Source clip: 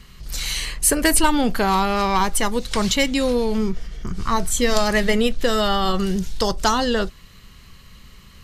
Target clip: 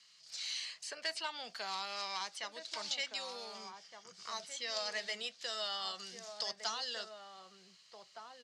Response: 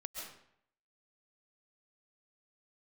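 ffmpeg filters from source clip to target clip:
-filter_complex "[0:a]aderivative,acrossover=split=270|700|4400[link_01][link_02][link_03][link_04];[link_04]acompressor=threshold=-39dB:ratio=6[link_05];[link_01][link_02][link_03][link_05]amix=inputs=4:normalize=0,volume=24.5dB,asoftclip=hard,volume=-24.5dB,highpass=frequency=120:width=0.5412,highpass=frequency=120:width=1.3066,equalizer=frequency=280:width_type=q:width=4:gain=-10,equalizer=frequency=660:width_type=q:width=4:gain=8,equalizer=frequency=4800:width_type=q:width=4:gain=6,lowpass=frequency=6900:width=0.5412,lowpass=frequency=6900:width=1.3066,asplit=2[link_06][link_07];[link_07]adelay=1516,volume=-6dB,highshelf=frequency=4000:gain=-34.1[link_08];[link_06][link_08]amix=inputs=2:normalize=0,volume=-6.5dB"

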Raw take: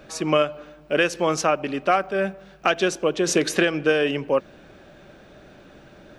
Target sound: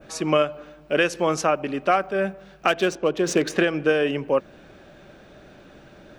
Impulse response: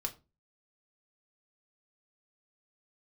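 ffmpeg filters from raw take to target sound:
-filter_complex "[0:a]adynamicequalizer=threshold=0.01:dfrequency=4200:dqfactor=0.7:tfrequency=4200:tqfactor=0.7:attack=5:release=100:ratio=0.375:range=2.5:mode=cutabove:tftype=bell,asettb=1/sr,asplit=3[link_01][link_02][link_03];[link_01]atrim=end=2.684[link_04];[link_02]atrim=start=2.68:end=3.59,asetpts=PTS-STARTPTS,afade=type=in:duration=0.004:curve=qsin,afade=type=out:start_time=0.906:duration=0.004:curve=qsin,adynamicsmooth=sensitivity=5.5:basefreq=3700[link_05];[link_03]atrim=start=3.586[link_06];[link_04][link_05]acrossfade=duration=0.004:curve1=hsin:curve2=qsin[link_07];[link_07][link_06]acrossfade=duration=0.004:curve1=qsin:curve2=hsin"

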